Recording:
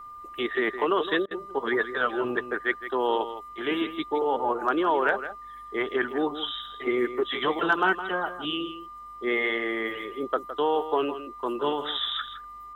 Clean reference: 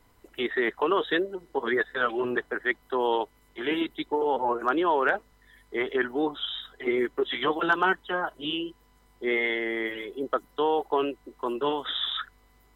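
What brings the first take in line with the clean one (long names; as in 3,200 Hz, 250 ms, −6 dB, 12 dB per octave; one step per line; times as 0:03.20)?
notch filter 1,200 Hz, Q 30
repair the gap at 0:01.26, 48 ms
echo removal 163 ms −11.5 dB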